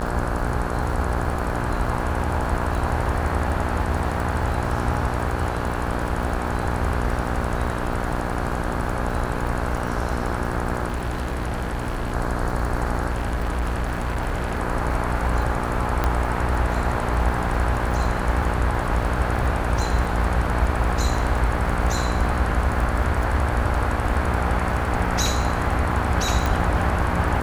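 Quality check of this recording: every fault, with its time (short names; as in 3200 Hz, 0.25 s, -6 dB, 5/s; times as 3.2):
buzz 60 Hz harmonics 28 -27 dBFS
crackle 87/s -31 dBFS
10.88–12.14 clipped -21.5 dBFS
13.1–14.58 clipped -20 dBFS
16.04 pop -8 dBFS
26.46 pop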